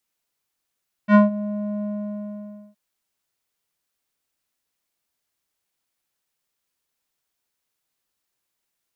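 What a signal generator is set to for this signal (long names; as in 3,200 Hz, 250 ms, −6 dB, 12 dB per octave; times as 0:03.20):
subtractive voice square G#3 12 dB per octave, low-pass 540 Hz, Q 1.6, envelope 2 octaves, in 0.21 s, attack 69 ms, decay 0.15 s, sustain −17 dB, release 0.92 s, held 0.75 s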